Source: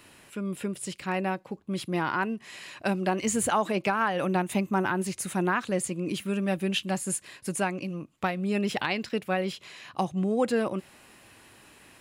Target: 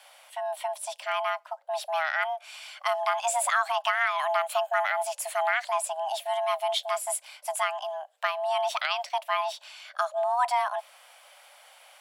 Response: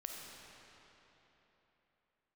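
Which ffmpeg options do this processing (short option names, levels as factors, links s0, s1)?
-af "afreqshift=480"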